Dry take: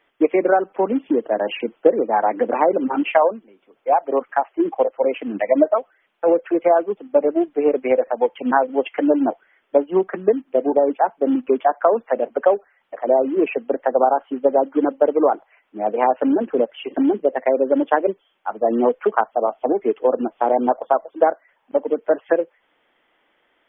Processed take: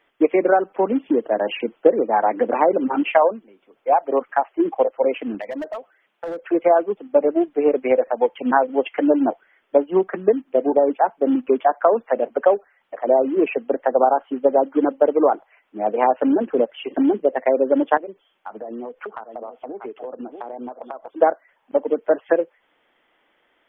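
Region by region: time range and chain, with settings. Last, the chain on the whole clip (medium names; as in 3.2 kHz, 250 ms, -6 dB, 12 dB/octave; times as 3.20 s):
5.34–6.42 s: high-pass 61 Hz + hard clipper -13 dBFS + compression 12:1, threshold -26 dBFS
17.97–21.08 s: delay 634 ms -20 dB + compression 16:1, threshold -28 dBFS
whole clip: none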